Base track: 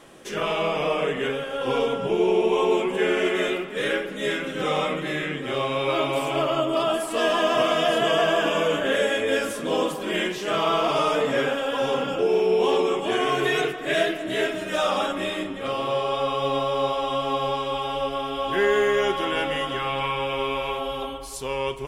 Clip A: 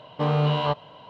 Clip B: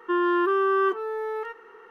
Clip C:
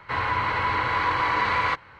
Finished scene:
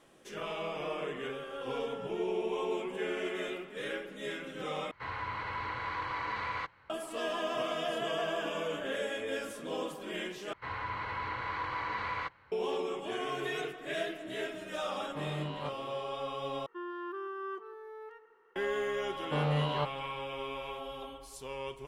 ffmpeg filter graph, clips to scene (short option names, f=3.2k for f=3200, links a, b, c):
-filter_complex "[2:a]asplit=2[a][b];[3:a]asplit=2[c][d];[1:a]asplit=2[e][f];[0:a]volume=-13dB[g];[a]acompressor=threshold=-29dB:ratio=6:attack=3.2:release=140:knee=1:detection=peak[h];[d]highshelf=f=5.4k:g=-3.5[i];[b]asplit=2[j][k];[k]adelay=158,lowpass=f=2k:p=1,volume=-13.5dB,asplit=2[l][m];[m]adelay=158,lowpass=f=2k:p=1,volume=0.35,asplit=2[n][o];[o]adelay=158,lowpass=f=2k:p=1,volume=0.35[p];[j][l][n][p]amix=inputs=4:normalize=0[q];[g]asplit=4[r][s][t][u];[r]atrim=end=4.914[v];[c]atrim=end=1.99,asetpts=PTS-STARTPTS,volume=-13dB[w];[s]atrim=start=6.896:end=10.534[x];[i]atrim=end=1.99,asetpts=PTS-STARTPTS,volume=-12.5dB[y];[t]atrim=start=12.516:end=16.664[z];[q]atrim=end=1.9,asetpts=PTS-STARTPTS,volume=-17.5dB[aa];[u]atrim=start=18.556[ab];[h]atrim=end=1.9,asetpts=PTS-STARTPTS,volume=-17dB,afade=t=in:d=0.004:c=hsin,afade=t=out:st=1.896:d=0.004:c=hsin,adelay=710[ac];[e]atrim=end=1.09,asetpts=PTS-STARTPTS,volume=-16dB,afade=t=in:d=0.004:c=hsin,afade=t=out:st=1.086:d=0.004:c=hsin,adelay=14960[ad];[f]atrim=end=1.09,asetpts=PTS-STARTPTS,volume=-8.5dB,afade=t=in:d=0.004:c=hsin,afade=t=out:st=1.086:d=0.004:c=hsin,adelay=19120[ae];[v][w]acrossfade=d=0.004:c1=hsin:c2=hsin[af];[af][x]acrossfade=d=0.004:c1=hsin:c2=hsin[ag];[ag][y]acrossfade=d=0.004:c1=hsin:c2=hsin[ah];[ah][z]acrossfade=d=0.004:c1=hsin:c2=hsin[ai];[ai][aa]acrossfade=d=0.004:c1=hsin:c2=hsin[aj];[aj][ab]acrossfade=d=0.004:c1=hsin:c2=hsin[ak];[ak][ac][ad][ae]amix=inputs=4:normalize=0"